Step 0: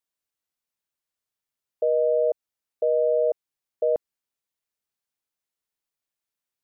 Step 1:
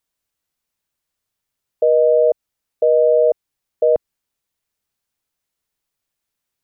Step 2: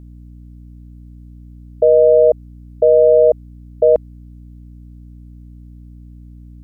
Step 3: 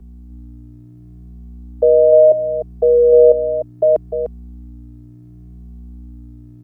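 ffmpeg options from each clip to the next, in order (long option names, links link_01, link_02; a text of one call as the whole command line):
ffmpeg -i in.wav -af "lowshelf=frequency=140:gain=8,volume=7.5dB" out.wav
ffmpeg -i in.wav -af "aeval=exprs='val(0)+0.01*(sin(2*PI*60*n/s)+sin(2*PI*2*60*n/s)/2+sin(2*PI*3*60*n/s)/3+sin(2*PI*4*60*n/s)/4+sin(2*PI*5*60*n/s)/5)':channel_layout=same,volume=3.5dB" out.wav
ffmpeg -i in.wav -filter_complex "[0:a]acrossover=split=190|230[link_01][link_02][link_03];[link_01]asoftclip=type=hard:threshold=-37dB[link_04];[link_04][link_02][link_03]amix=inputs=3:normalize=0,aecho=1:1:300:0.376,asplit=2[link_05][link_06];[link_06]adelay=2.2,afreqshift=0.7[link_07];[link_05][link_07]amix=inputs=2:normalize=1,volume=2dB" out.wav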